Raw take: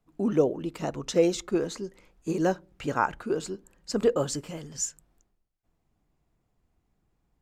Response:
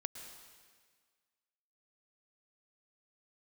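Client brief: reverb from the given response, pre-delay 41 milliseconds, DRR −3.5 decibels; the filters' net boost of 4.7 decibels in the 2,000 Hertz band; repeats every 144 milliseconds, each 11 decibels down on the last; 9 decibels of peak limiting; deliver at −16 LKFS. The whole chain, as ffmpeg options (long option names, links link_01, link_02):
-filter_complex "[0:a]equalizer=frequency=2000:width_type=o:gain=7,alimiter=limit=-17dB:level=0:latency=1,aecho=1:1:144|288|432:0.282|0.0789|0.0221,asplit=2[link_01][link_02];[1:a]atrim=start_sample=2205,adelay=41[link_03];[link_02][link_03]afir=irnorm=-1:irlink=0,volume=5dB[link_04];[link_01][link_04]amix=inputs=2:normalize=0,volume=9.5dB"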